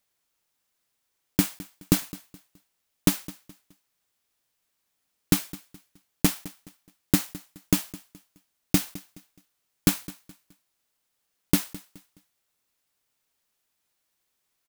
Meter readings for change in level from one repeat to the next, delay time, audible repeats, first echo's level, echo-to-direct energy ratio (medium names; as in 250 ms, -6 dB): -9.5 dB, 211 ms, 2, -19.0 dB, -18.5 dB